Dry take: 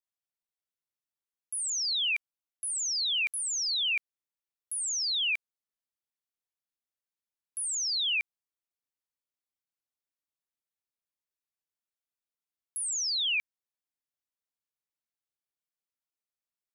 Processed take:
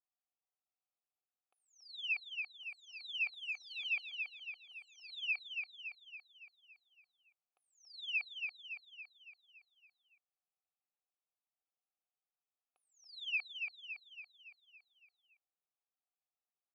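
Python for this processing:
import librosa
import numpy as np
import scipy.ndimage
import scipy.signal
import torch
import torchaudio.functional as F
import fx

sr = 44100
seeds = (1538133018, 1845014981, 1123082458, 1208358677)

y = fx.vowel_filter(x, sr, vowel='a')
y = fx.air_absorb(y, sr, metres=280.0)
y = y + 0.52 * np.pad(y, (int(2.3 * sr / 1000.0), 0))[:len(y)]
y = fx.echo_feedback(y, sr, ms=281, feedback_pct=54, wet_db=-5)
y = y * librosa.db_to_amplitude(7.5)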